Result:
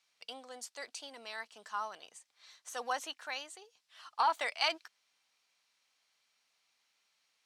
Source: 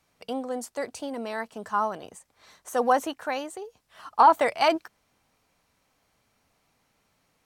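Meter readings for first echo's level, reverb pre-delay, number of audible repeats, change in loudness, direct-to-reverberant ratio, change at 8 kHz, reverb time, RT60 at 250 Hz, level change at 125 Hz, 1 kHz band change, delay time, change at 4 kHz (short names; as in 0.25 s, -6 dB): none, none, none, -11.5 dB, none, -4.5 dB, none, none, n/a, -13.0 dB, none, -1.0 dB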